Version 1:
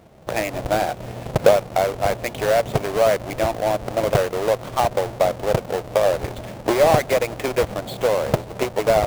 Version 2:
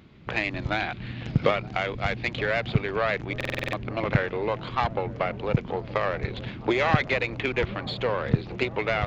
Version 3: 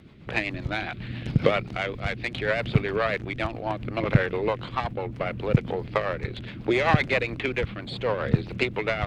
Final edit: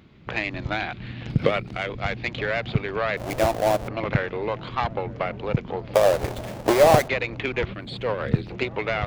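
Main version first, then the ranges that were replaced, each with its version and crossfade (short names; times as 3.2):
2
1.3–1.9 from 3
3.17–3.88 from 1
5.94–7.08 from 1
7.73–8.5 from 3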